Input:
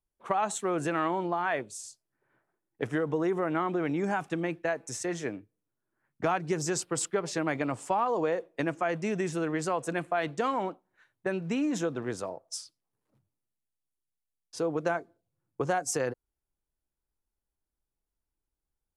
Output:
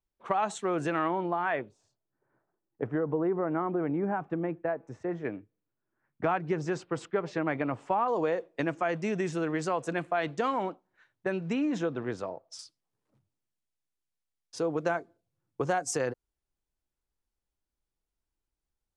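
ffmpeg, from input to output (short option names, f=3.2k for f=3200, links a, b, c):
-af "asetnsamples=n=441:p=0,asendcmd='0.99 lowpass f 3000;1.69 lowpass f 1200;5.25 lowpass f 2600;8.08 lowpass f 6500;11.53 lowpass f 4000;12.59 lowpass f 8800',lowpass=5.6k"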